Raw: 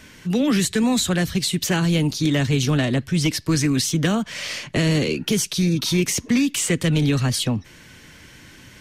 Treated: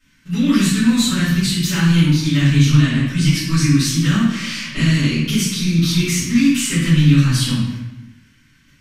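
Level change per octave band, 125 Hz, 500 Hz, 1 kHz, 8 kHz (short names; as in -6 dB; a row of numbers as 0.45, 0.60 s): +7.0, -7.0, 0.0, +1.5 dB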